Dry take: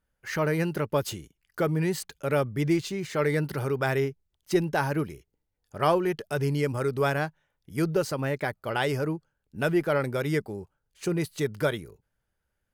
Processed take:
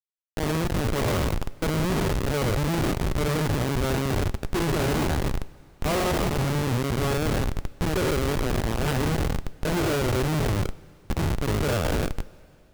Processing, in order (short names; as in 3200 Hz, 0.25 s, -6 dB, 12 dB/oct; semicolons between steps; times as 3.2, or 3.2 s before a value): spectral trails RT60 2.97 s; transient shaper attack -5 dB, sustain +2 dB; Schmitt trigger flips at -19.5 dBFS; two-slope reverb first 0.21 s, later 3 s, from -18 dB, DRR 14 dB